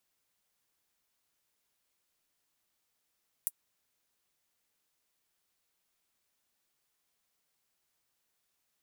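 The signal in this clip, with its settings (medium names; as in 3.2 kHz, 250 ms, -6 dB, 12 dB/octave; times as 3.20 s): closed hi-hat, high-pass 10 kHz, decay 0.05 s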